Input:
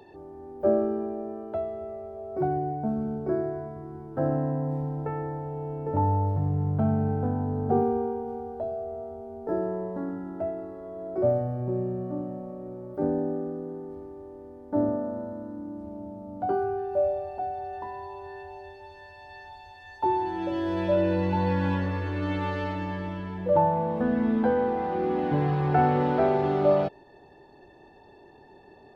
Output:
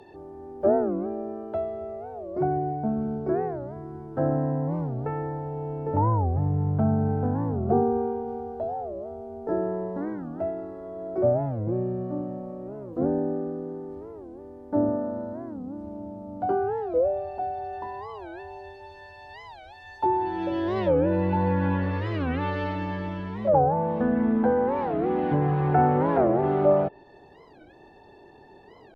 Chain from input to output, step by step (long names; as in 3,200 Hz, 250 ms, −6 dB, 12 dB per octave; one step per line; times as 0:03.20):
treble cut that deepens with the level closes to 1,600 Hz, closed at −20 dBFS
wow of a warped record 45 rpm, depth 250 cents
level +1.5 dB